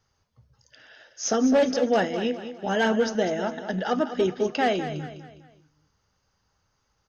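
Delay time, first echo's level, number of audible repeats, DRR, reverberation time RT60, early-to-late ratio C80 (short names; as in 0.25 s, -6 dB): 0.204 s, -11.0 dB, 4, none, none, none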